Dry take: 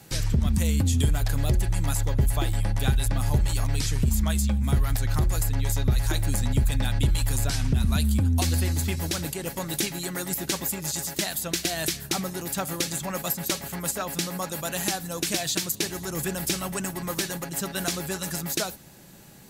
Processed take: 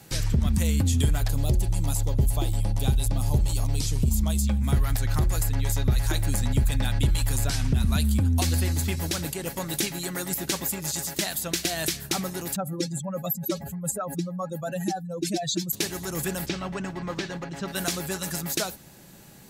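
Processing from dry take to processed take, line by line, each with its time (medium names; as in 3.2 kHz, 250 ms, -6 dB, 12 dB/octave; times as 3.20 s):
1.29–4.47 s: peaking EQ 1.7 kHz -12.5 dB 1 oct
12.56–15.73 s: spectral contrast enhancement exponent 2.3
16.46–17.68 s: distance through air 160 m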